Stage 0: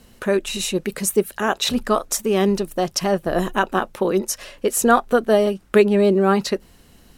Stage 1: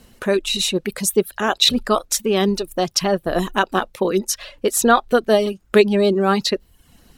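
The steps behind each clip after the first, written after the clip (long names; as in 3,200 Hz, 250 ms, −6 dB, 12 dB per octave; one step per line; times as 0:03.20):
reverb reduction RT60 0.59 s
dynamic equaliser 3,900 Hz, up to +8 dB, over −43 dBFS, Q 1.7
level +1 dB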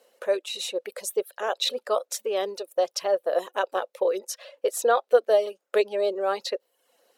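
four-pole ladder high-pass 480 Hz, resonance 70%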